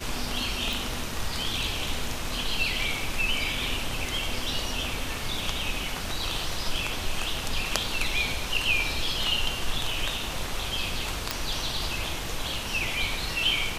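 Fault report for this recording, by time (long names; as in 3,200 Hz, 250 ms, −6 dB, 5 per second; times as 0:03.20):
0:00.73: click
0:11.31: click −8 dBFS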